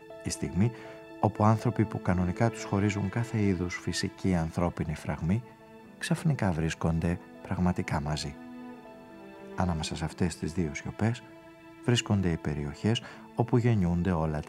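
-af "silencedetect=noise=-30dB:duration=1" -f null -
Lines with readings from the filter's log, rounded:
silence_start: 8.30
silence_end: 9.58 | silence_duration: 1.28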